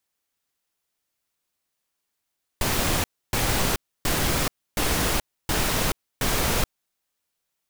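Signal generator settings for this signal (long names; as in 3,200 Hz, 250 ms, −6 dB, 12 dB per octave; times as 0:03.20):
noise bursts pink, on 0.43 s, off 0.29 s, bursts 6, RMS −23 dBFS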